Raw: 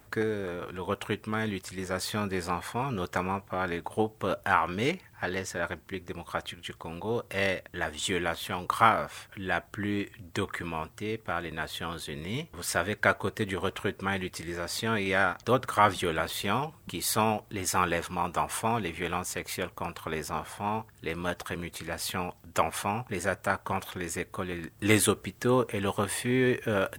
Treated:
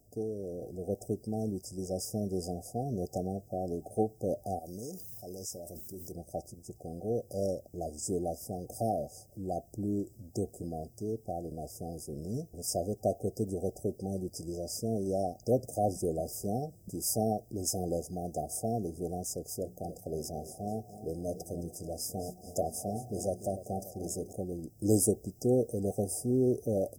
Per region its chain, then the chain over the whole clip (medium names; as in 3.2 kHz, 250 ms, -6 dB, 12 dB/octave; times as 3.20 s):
4.59–6.12 s: pre-emphasis filter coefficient 0.8 + level flattener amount 70%
19.58–24.33 s: hum notches 60/120/180/240/300/360/420 Hz + two-band feedback delay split 810 Hz, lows 292 ms, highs 218 ms, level -13 dB
whole clip: FFT band-reject 770–4800 Hz; level rider gain up to 5.5 dB; trim -7 dB